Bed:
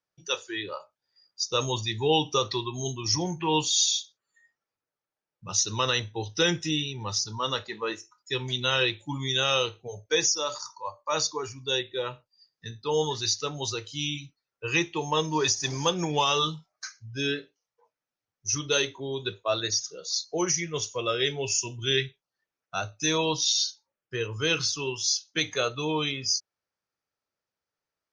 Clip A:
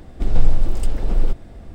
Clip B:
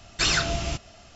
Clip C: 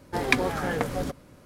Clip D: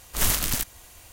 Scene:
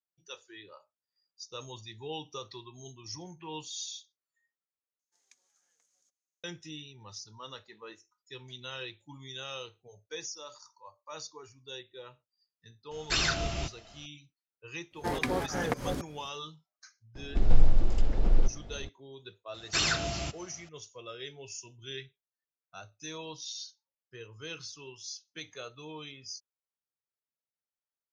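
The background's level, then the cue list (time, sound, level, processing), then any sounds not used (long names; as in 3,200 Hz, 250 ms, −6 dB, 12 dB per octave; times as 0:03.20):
bed −16 dB
0:04.99: overwrite with C −18 dB + resonant band-pass 6,500 Hz, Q 8.8
0:12.91: mix in B −5 dB + low-pass filter 7,000 Hz
0:14.91: mix in C −3.5 dB + fake sidechain pumping 109 BPM, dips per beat 2, −22 dB, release 149 ms
0:17.15: mix in A −5.5 dB + downsampling to 16,000 Hz
0:19.54: mix in B −5 dB + high-pass filter 67 Hz
not used: D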